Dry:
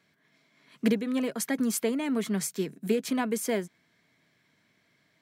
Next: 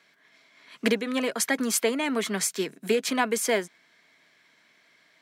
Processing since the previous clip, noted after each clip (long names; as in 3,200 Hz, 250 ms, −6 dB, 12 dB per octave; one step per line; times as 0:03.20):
meter weighting curve A
level +7.5 dB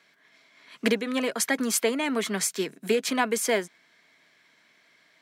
no processing that can be heard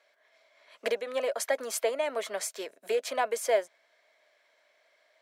high-pass with resonance 580 Hz, resonance Q 5.7
level −8 dB